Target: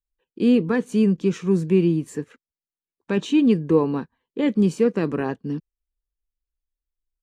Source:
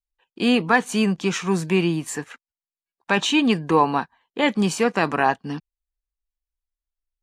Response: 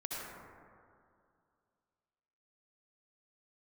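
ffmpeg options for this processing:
-af "firequalizer=gain_entry='entry(470,0);entry(730,-18);entry(1100,-14)':delay=0.05:min_phase=1,volume=2.5dB"

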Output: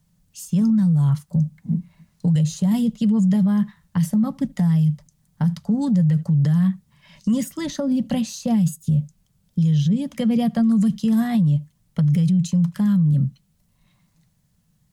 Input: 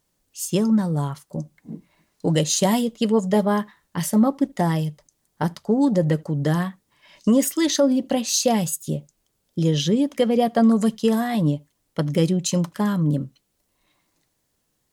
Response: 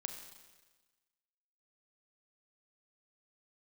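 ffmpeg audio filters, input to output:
-filter_complex "[0:a]lowshelf=frequency=240:width_type=q:width=3:gain=11,acrossover=split=250|1400[link_01][link_02][link_03];[link_01]acompressor=threshold=-11dB:ratio=4[link_04];[link_02]acompressor=threshold=-26dB:ratio=4[link_05];[link_03]acompressor=threshold=-36dB:ratio=4[link_06];[link_04][link_05][link_06]amix=inputs=3:normalize=0,alimiter=limit=-13dB:level=0:latency=1:release=11"

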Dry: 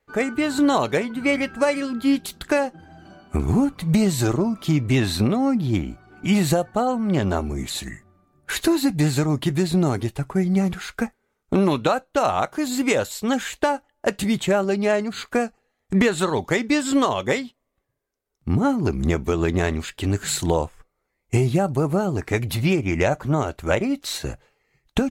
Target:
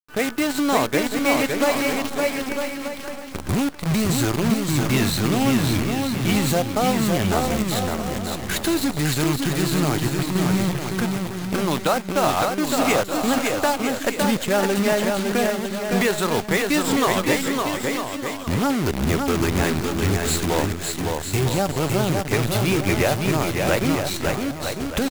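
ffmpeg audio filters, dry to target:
ffmpeg -i in.wav -filter_complex "[0:a]acrossover=split=730|880[link_01][link_02][link_03];[link_01]alimiter=limit=-16dB:level=0:latency=1:release=12[link_04];[link_04][link_02][link_03]amix=inputs=3:normalize=0,asettb=1/sr,asplit=3[link_05][link_06][link_07];[link_05]atrim=end=1.934[link_08];[link_06]atrim=start=1.93:end=3.49,asetpts=PTS-STARTPTS,afade=type=in:duration=0.004:curve=qsin,afade=type=out:start_time=1.556:duration=0.004:curve=qsin,acrossover=split=160|5300[link_09][link_10][link_11];[link_09]acompressor=threshold=-36dB:ratio=4[link_12];[link_10]acompressor=threshold=-33dB:ratio=4[link_13];[link_11]acompressor=threshold=-53dB:ratio=4[link_14];[link_12][link_13][link_14]amix=inputs=3:normalize=0[link_15];[link_07]atrim=start=3.486[link_16];[link_08][link_15]acrossfade=duration=0.004:curve1=hsin:curve2=qsin[link_17];[link_17][link_16]acrossfade=duration=0.004:curve1=qsin:curve2=hsin,acrusher=bits=5:dc=4:mix=0:aa=0.000001,aecho=1:1:560|952|1226|1418|1553:0.631|0.398|0.251|0.158|0.1" out.wav

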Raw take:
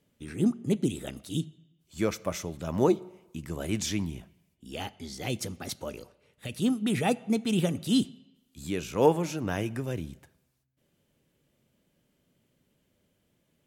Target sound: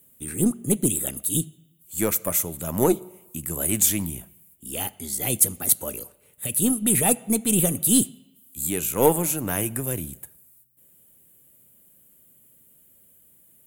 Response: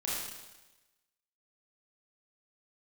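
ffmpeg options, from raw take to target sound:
-af "aeval=exprs='0.355*(cos(1*acos(clip(val(0)/0.355,-1,1)))-cos(1*PI/2))+0.0158*(cos(6*acos(clip(val(0)/0.355,-1,1)))-cos(6*PI/2))':channel_layout=same,aexciter=amount=10.2:drive=7.9:freq=7900,volume=3dB"

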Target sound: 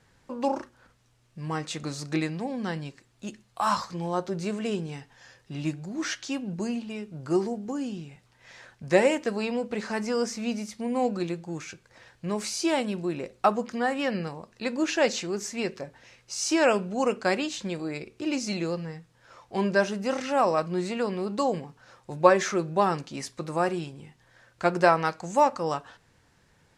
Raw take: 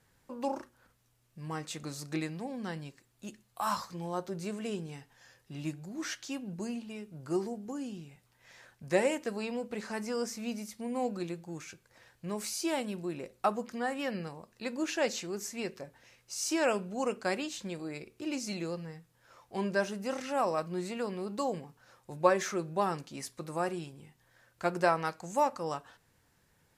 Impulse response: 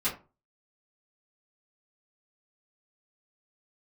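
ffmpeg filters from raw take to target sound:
-af "lowpass=7200,volume=7dB"

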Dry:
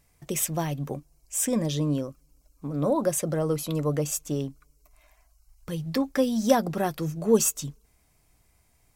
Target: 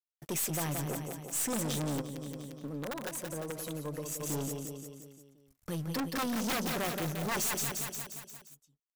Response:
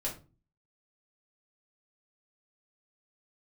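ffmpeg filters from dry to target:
-filter_complex "[0:a]aresample=32000,aresample=44100,aeval=exprs='(mod(6.68*val(0)+1,2)-1)/6.68':channel_layout=same,highshelf=frequency=11000:gain=9.5,aeval=exprs='sgn(val(0))*max(abs(val(0))-0.00237,0)':channel_layout=same,aecho=1:1:175|350|525|700|875|1050:0.376|0.203|0.11|0.0592|0.032|0.0173,asplit=3[link_01][link_02][link_03];[link_01]afade=type=out:start_time=2:duration=0.02[link_04];[link_02]acompressor=threshold=-34dB:ratio=12,afade=type=in:start_time=2:duration=0.02,afade=type=out:start_time=4.19:duration=0.02[link_05];[link_03]afade=type=in:start_time=4.19:duration=0.02[link_06];[link_04][link_05][link_06]amix=inputs=3:normalize=0,aeval=exprs='(tanh(39.8*val(0)+0.4)-tanh(0.4))/39.8':channel_layout=same,lowshelf=frequency=88:gain=-8,volume=2dB"

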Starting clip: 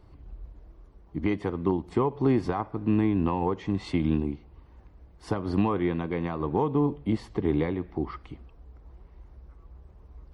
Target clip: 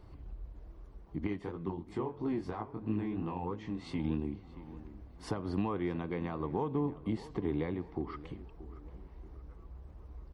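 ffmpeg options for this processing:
ffmpeg -i in.wav -filter_complex "[0:a]acompressor=threshold=-44dB:ratio=1.5,asplit=2[link_01][link_02];[link_02]adelay=629,lowpass=frequency=1800:poles=1,volume=-16dB,asplit=2[link_03][link_04];[link_04]adelay=629,lowpass=frequency=1800:poles=1,volume=0.47,asplit=2[link_05][link_06];[link_06]adelay=629,lowpass=frequency=1800:poles=1,volume=0.47,asplit=2[link_07][link_08];[link_08]adelay=629,lowpass=frequency=1800:poles=1,volume=0.47[link_09];[link_01][link_03][link_05][link_07][link_09]amix=inputs=5:normalize=0,asettb=1/sr,asplit=3[link_10][link_11][link_12];[link_10]atrim=end=1.274[link_13];[link_11]atrim=start=1.27:end=3.99,asetpts=PTS-STARTPTS,afade=type=in:duration=0.004:curve=qsin,afade=type=out:start_time=2.716:duration=0.004:curve=qsin,flanger=delay=18:depth=6.3:speed=3[link_14];[link_12]atrim=start=3.986[link_15];[link_13][link_14]acrossfade=duration=0.004:curve1=hsin:curve2=qsin[link_16];[link_16][link_15]acrossfade=duration=0.004:curve1=qsin:curve2=hsin" out.wav

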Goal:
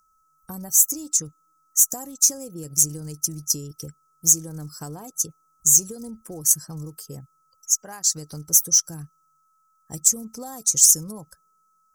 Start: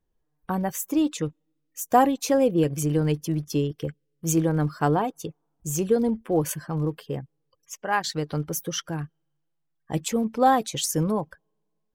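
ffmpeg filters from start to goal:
ffmpeg -i in.wav -af "acompressor=threshold=-26dB:ratio=5,aeval=exprs='val(0)+0.00251*sin(2*PI*1300*n/s)':channel_layout=same,highshelf=frequency=4500:width_type=q:width=3:gain=12,acontrast=57,bass=frequency=250:gain=7,treble=frequency=4000:gain=14,volume=-16dB" out.wav

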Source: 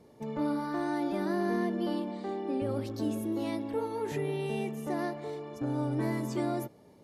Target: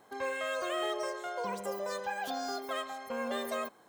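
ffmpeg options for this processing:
ffmpeg -i in.wav -af "asetrate=79821,aresample=44100,tiltshelf=frequency=1100:gain=-4,volume=-2dB" out.wav

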